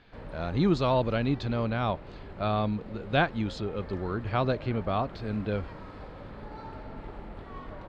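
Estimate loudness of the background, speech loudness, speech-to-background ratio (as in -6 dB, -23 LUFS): -44.5 LUFS, -29.5 LUFS, 15.0 dB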